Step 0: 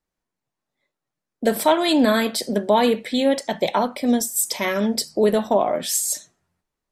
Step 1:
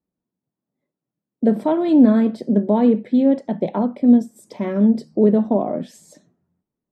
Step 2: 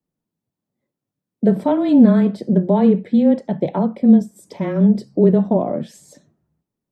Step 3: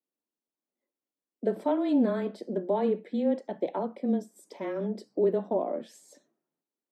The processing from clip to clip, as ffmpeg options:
-af "bandpass=f=210:t=q:w=1.3:csg=0,volume=8dB"
-af "afreqshift=-20,volume=1.5dB"
-af "highpass=f=280:w=0.5412,highpass=f=280:w=1.3066,volume=-8.5dB"

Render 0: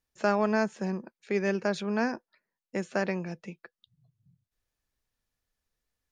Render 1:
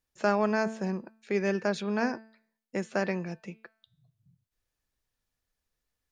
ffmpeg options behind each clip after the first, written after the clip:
-af "bandreject=f=221.4:t=h:w=4,bandreject=f=442.8:t=h:w=4,bandreject=f=664.2:t=h:w=4,bandreject=f=885.6:t=h:w=4,bandreject=f=1.107k:t=h:w=4,bandreject=f=1.3284k:t=h:w=4,bandreject=f=1.5498k:t=h:w=4,bandreject=f=1.7712k:t=h:w=4,bandreject=f=1.9926k:t=h:w=4,bandreject=f=2.214k:t=h:w=4,bandreject=f=2.4354k:t=h:w=4,bandreject=f=2.6568k:t=h:w=4,bandreject=f=2.8782k:t=h:w=4,bandreject=f=3.0996k:t=h:w=4,bandreject=f=3.321k:t=h:w=4,bandreject=f=3.5424k:t=h:w=4,bandreject=f=3.7638k:t=h:w=4,bandreject=f=3.9852k:t=h:w=4,bandreject=f=4.2066k:t=h:w=4,bandreject=f=4.428k:t=h:w=4,bandreject=f=4.6494k:t=h:w=4,bandreject=f=4.8708k:t=h:w=4"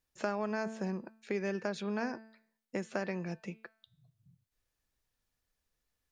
-af "acompressor=threshold=-34dB:ratio=2.5"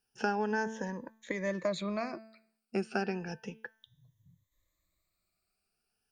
-af "afftfilt=real='re*pow(10,16/40*sin(2*PI*(1.1*log(max(b,1)*sr/1024/100)/log(2)-(0.33)*(pts-256)/sr)))':imag='im*pow(10,16/40*sin(2*PI*(1.1*log(max(b,1)*sr/1024/100)/log(2)-(0.33)*(pts-256)/sr)))':win_size=1024:overlap=0.75"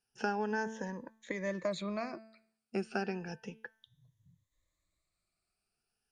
-af "volume=-2.5dB" -ar 32000 -c:a ac3 -b:a 64k

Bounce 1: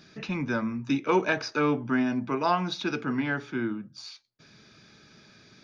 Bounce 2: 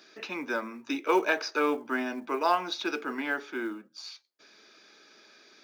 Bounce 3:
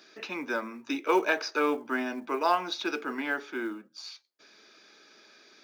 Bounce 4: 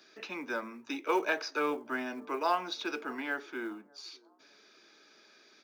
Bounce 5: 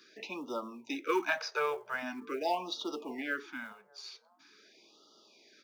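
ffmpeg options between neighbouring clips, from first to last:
-af "highpass=f=320:w=0.5412,highpass=f=320:w=1.3066,acrusher=bits=8:mode=log:mix=0:aa=0.000001"
-af anull
-filter_complex "[0:a]acrossover=split=320|1100[a][b][c];[a]asoftclip=type=tanh:threshold=-35.5dB[d];[b]aecho=1:1:601|1202|1803:0.0891|0.0357|0.0143[e];[d][e][c]amix=inputs=3:normalize=0,volume=-4dB"
-af "afftfilt=real='re*(1-between(b*sr/1024,240*pow(2000/240,0.5+0.5*sin(2*PI*0.44*pts/sr))/1.41,240*pow(2000/240,0.5+0.5*sin(2*PI*0.44*pts/sr))*1.41))':imag='im*(1-between(b*sr/1024,240*pow(2000/240,0.5+0.5*sin(2*PI*0.44*pts/sr))/1.41,240*pow(2000/240,0.5+0.5*sin(2*PI*0.44*pts/sr))*1.41))':win_size=1024:overlap=0.75"

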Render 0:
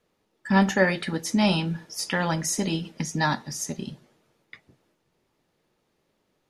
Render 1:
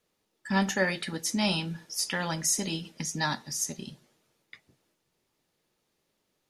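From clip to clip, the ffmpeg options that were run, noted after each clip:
-af "highshelf=f=3k:g=10,volume=-7dB"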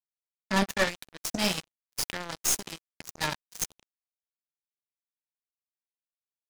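-af "acrusher=bits=3:mix=0:aa=0.5,aeval=exprs='0.282*(cos(1*acos(clip(val(0)/0.282,-1,1)))-cos(1*PI/2))+0.0316*(cos(6*acos(clip(val(0)/0.282,-1,1)))-cos(6*PI/2))':c=same"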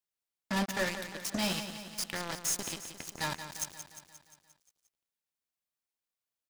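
-af "asoftclip=type=tanh:threshold=-26.5dB,aecho=1:1:176|352|528|704|880|1056|1232:0.316|0.187|0.11|0.0649|0.0383|0.0226|0.0133,volume=2.5dB"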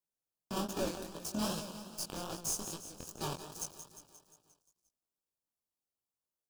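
-filter_complex "[0:a]acrossover=split=650|3800[a][b][c];[b]acrusher=samples=21:mix=1:aa=0.000001[d];[a][d][c]amix=inputs=3:normalize=0,flanger=delay=17:depth=7:speed=2.5"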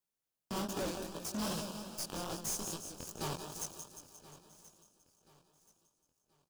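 -af "asoftclip=type=hard:threshold=-35.5dB,aecho=1:1:1029|2058|3087:0.119|0.0428|0.0154,volume=2dB"

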